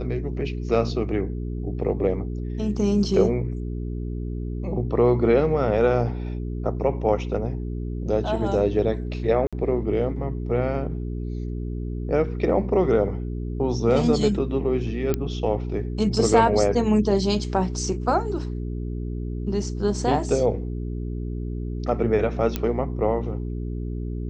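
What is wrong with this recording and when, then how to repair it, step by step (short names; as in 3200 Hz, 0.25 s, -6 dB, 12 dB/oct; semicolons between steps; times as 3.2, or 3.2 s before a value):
hum 60 Hz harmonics 7 -29 dBFS
9.47–9.53 gap 56 ms
15.14 pop -10 dBFS
22.56 pop -10 dBFS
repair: de-click; de-hum 60 Hz, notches 7; interpolate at 9.47, 56 ms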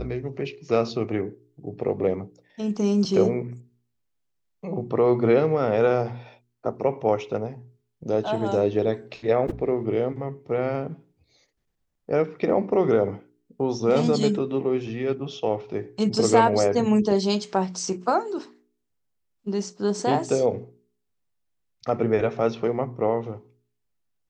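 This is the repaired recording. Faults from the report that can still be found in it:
none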